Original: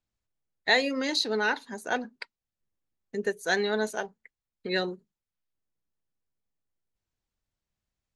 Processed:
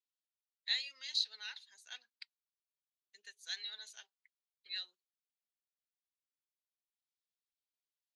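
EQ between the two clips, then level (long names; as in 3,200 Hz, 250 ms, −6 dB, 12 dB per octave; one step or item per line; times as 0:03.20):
four-pole ladder band-pass 4,300 Hz, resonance 35%
+2.0 dB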